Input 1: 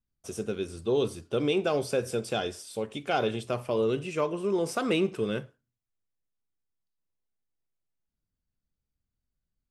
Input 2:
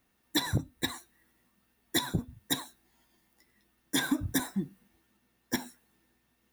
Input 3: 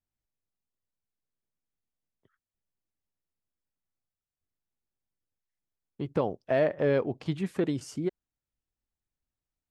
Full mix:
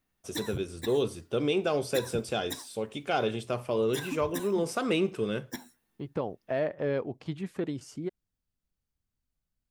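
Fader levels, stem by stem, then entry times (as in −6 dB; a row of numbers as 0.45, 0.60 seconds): −1.0, −8.0, −4.5 decibels; 0.00, 0.00, 0.00 seconds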